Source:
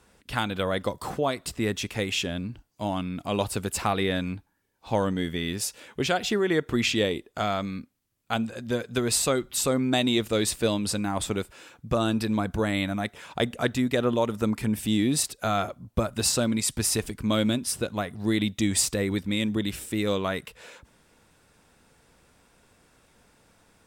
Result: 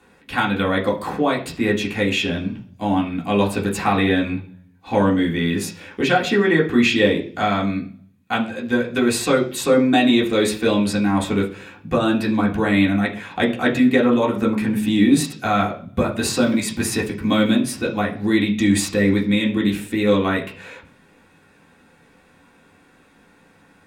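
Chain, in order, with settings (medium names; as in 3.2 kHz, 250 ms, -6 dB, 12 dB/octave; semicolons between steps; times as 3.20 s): 16.34–17.78 s: block-companded coder 7-bit; reverberation RT60 0.45 s, pre-delay 3 ms, DRR -4.5 dB; trim -1 dB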